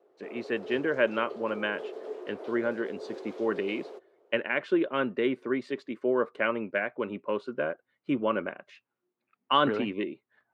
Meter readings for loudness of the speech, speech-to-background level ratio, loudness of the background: -30.5 LUFS, 11.5 dB, -42.0 LUFS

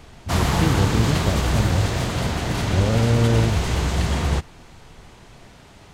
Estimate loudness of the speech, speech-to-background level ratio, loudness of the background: -23.5 LUFS, -0.5 dB, -23.0 LUFS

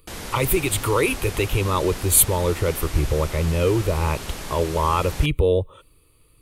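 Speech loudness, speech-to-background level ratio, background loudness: -21.5 LUFS, 12.0 dB, -33.5 LUFS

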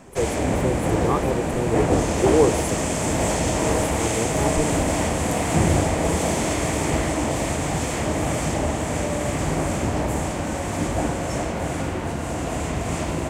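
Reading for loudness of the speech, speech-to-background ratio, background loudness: -26.5 LUFS, -3.0 dB, -23.5 LUFS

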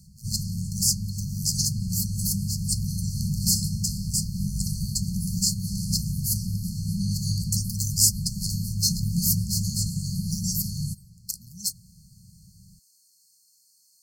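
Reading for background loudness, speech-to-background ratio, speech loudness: -29.5 LUFS, 2.0 dB, -27.5 LUFS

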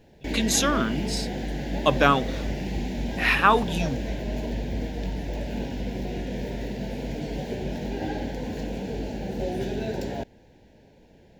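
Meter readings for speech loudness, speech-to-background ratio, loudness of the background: -23.5 LUFS, 8.0 dB, -31.5 LUFS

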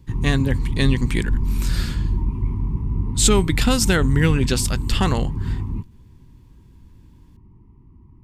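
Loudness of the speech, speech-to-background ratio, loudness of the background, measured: -21.5 LUFS, 3.5 dB, -25.0 LUFS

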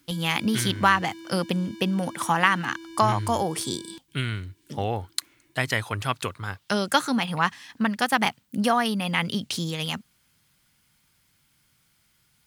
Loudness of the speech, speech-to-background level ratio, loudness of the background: -26.0 LUFS, 17.0 dB, -43.0 LUFS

